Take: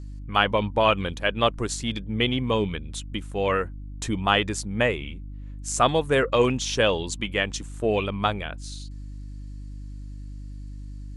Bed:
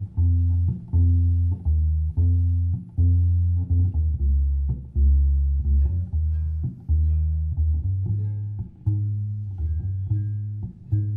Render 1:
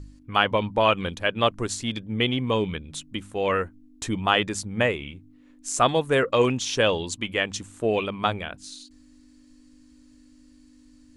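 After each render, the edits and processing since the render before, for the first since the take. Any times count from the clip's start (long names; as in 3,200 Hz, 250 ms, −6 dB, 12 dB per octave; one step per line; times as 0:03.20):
hum removal 50 Hz, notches 4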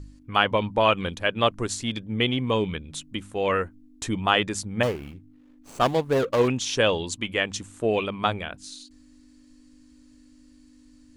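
0:04.83–0:06.48: running median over 25 samples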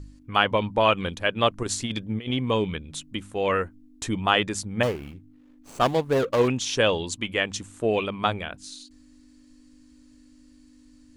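0:01.63–0:02.31: compressor whose output falls as the input rises −28 dBFS, ratio −0.5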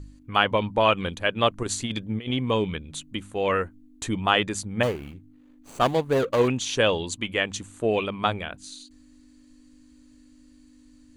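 notch filter 5,300 Hz, Q 8.7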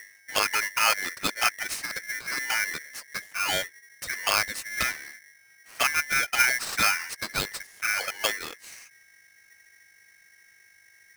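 flanger swept by the level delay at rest 11.4 ms, full sweep at −16.5 dBFS
ring modulator with a square carrier 1,900 Hz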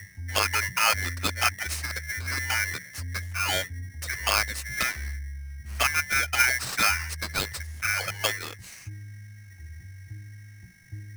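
mix in bed −17 dB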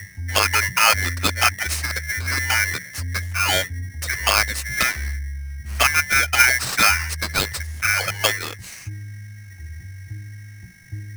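level +7 dB
brickwall limiter −3 dBFS, peak gain reduction 2.5 dB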